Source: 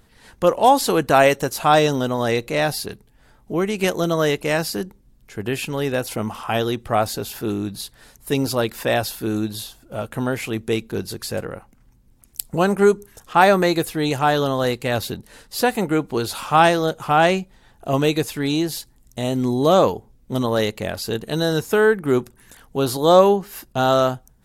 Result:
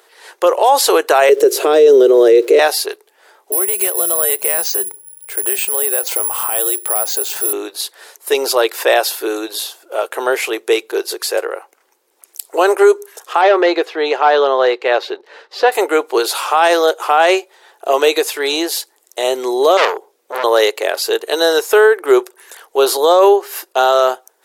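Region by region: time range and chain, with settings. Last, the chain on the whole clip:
0:01.29–0:02.59: downward compressor 3 to 1, threshold −23 dBFS + centre clipping without the shift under −46 dBFS + low shelf with overshoot 590 Hz +12 dB, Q 3
0:03.52–0:07.53: bad sample-rate conversion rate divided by 4×, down filtered, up zero stuff + downward compressor 3 to 1, threshold −22 dBFS
0:13.41–0:15.72: hard clipping −12 dBFS + high-frequency loss of the air 220 metres
0:19.77–0:20.44: high-pass filter 93 Hz + low-shelf EQ 150 Hz +6.5 dB + saturating transformer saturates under 3,400 Hz
whole clip: elliptic high-pass filter 380 Hz, stop band 50 dB; boost into a limiter +11.5 dB; level −1 dB

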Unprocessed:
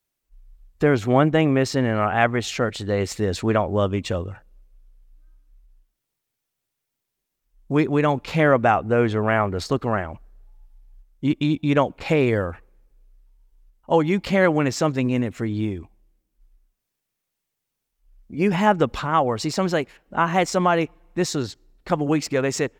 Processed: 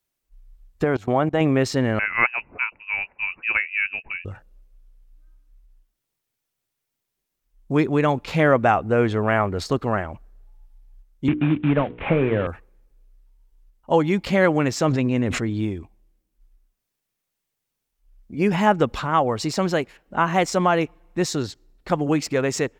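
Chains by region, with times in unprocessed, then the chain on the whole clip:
0:00.84–0:01.41: output level in coarse steps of 22 dB + parametric band 820 Hz +6.5 dB 1.4 octaves
0:01.99–0:04.25: high-pass filter 180 Hz + voice inversion scrambler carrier 2,800 Hz + expander for the loud parts, over −42 dBFS
0:11.28–0:12.47: variable-slope delta modulation 16 kbit/s + mains-hum notches 60/120/180/240/300/360/420/480 Hz + multiband upward and downward compressor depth 100%
0:14.85–0:15.50: high-frequency loss of the air 52 metres + level that may fall only so fast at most 31 dB per second
whole clip: no processing

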